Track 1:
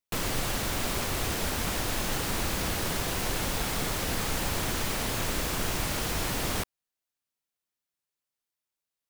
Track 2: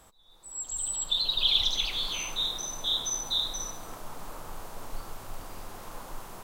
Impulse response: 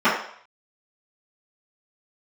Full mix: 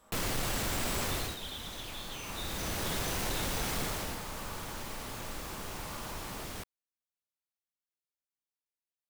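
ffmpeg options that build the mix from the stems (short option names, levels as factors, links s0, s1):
-filter_complex "[0:a]volume=3.55,afade=t=out:st=1.12:d=0.25:silence=0.223872,afade=t=in:st=2.23:d=0.72:silence=0.251189,afade=t=out:st=3.79:d=0.42:silence=0.334965[s0];[1:a]acompressor=threshold=0.0178:ratio=6,volume=0.335,asplit=2[s1][s2];[s2]volume=0.168[s3];[2:a]atrim=start_sample=2205[s4];[s3][s4]afir=irnorm=-1:irlink=0[s5];[s0][s1][s5]amix=inputs=3:normalize=0,asoftclip=type=tanh:threshold=0.0531"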